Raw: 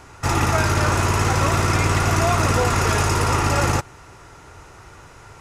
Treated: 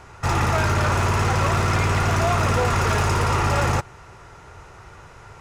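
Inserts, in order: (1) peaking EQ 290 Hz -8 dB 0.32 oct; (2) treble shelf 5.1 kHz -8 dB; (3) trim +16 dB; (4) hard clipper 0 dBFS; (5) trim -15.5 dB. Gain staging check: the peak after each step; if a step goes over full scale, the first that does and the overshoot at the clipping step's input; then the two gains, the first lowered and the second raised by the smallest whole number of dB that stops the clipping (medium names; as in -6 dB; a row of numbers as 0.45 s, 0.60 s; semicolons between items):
-6.5 dBFS, -7.0 dBFS, +9.0 dBFS, 0.0 dBFS, -15.5 dBFS; step 3, 9.0 dB; step 3 +7 dB, step 5 -6.5 dB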